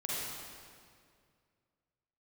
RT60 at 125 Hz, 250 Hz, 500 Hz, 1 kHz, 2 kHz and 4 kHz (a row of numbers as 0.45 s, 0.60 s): 2.7 s, 2.4 s, 2.3 s, 2.0 s, 1.9 s, 1.7 s